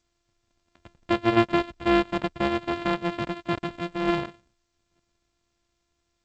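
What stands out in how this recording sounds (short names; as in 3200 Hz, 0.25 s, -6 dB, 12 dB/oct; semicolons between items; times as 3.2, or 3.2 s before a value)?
a buzz of ramps at a fixed pitch in blocks of 128 samples; G.722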